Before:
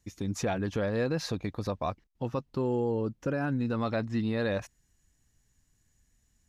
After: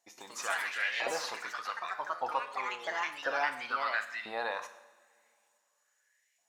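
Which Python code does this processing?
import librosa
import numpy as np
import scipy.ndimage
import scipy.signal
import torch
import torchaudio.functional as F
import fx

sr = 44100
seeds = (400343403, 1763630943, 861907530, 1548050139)

y = fx.filter_lfo_highpass(x, sr, shape='saw_up', hz=0.94, low_hz=680.0, high_hz=2300.0, q=5.4)
y = fx.rev_double_slope(y, sr, seeds[0], early_s=0.71, late_s=2.5, knee_db=-18, drr_db=7.5)
y = fx.echo_pitch(y, sr, ms=124, semitones=3, count=3, db_per_echo=-3.0)
y = y * 10.0 ** (-3.0 / 20.0)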